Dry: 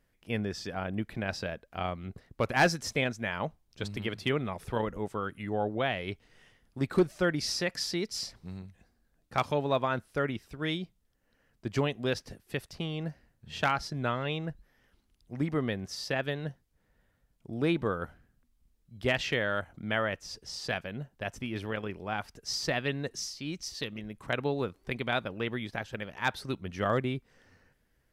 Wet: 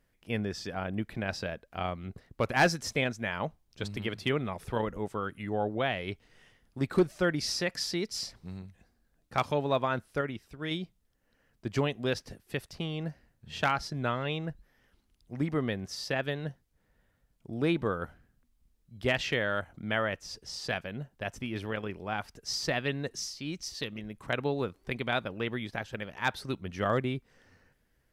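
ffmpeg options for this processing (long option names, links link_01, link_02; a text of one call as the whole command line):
ffmpeg -i in.wav -filter_complex "[0:a]asplit=3[link_01][link_02][link_03];[link_01]atrim=end=10.212[link_04];[link_02]atrim=start=10.208:end=10.712,asetpts=PTS-STARTPTS,volume=-3.5dB[link_05];[link_03]atrim=start=10.708[link_06];[link_04][link_05]acrossfade=duration=0.004:curve1=hsin:curve2=hsin[link_07];[link_07][link_06]acrossfade=duration=0.004:curve1=hsin:curve2=hsin" out.wav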